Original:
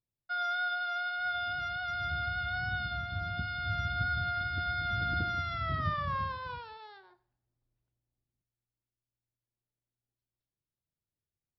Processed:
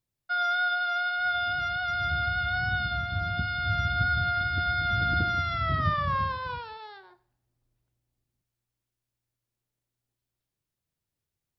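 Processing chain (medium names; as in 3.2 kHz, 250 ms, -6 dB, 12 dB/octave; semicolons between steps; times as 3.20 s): trim +6 dB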